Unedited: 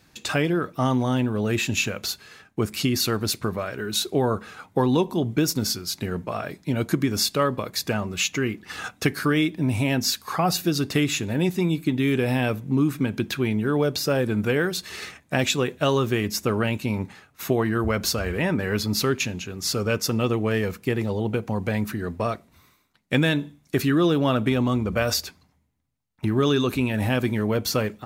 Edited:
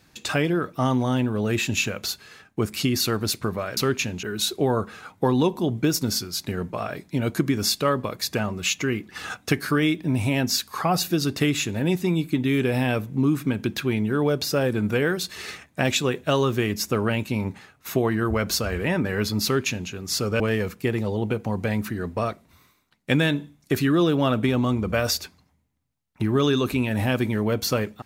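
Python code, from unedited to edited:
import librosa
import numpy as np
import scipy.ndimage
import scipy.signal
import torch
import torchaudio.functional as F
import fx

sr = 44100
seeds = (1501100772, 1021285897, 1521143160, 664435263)

y = fx.edit(x, sr, fx.duplicate(start_s=18.98, length_s=0.46, to_s=3.77),
    fx.cut(start_s=19.94, length_s=0.49), tone=tone)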